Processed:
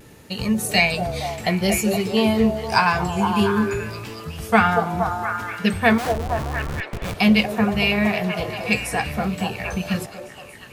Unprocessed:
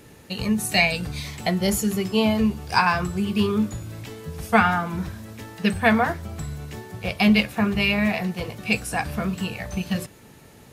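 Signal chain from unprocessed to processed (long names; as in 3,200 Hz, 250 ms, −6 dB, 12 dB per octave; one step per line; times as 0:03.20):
0:05.98–0:07.14: comparator with hysteresis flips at −30 dBFS
pitch vibrato 0.56 Hz 19 cents
echo through a band-pass that steps 234 ms, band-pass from 510 Hz, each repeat 0.7 octaves, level −1 dB
level +1.5 dB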